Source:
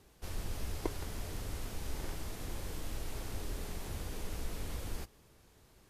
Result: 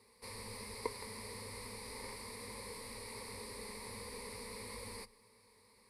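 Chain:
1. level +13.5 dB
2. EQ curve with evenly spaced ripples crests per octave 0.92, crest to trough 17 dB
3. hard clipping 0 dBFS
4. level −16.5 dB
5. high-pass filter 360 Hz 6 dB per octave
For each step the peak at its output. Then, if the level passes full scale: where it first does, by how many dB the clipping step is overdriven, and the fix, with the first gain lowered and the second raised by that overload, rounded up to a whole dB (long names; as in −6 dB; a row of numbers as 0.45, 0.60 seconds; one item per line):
−7.5, −4.0, −4.0, −20.5, −22.5 dBFS
no step passes full scale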